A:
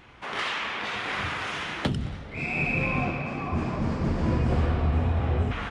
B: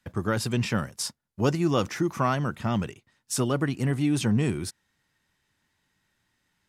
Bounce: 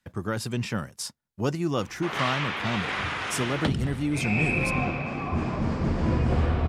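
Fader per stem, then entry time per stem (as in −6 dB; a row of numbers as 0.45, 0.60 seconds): +0.5, −3.0 decibels; 1.80, 0.00 seconds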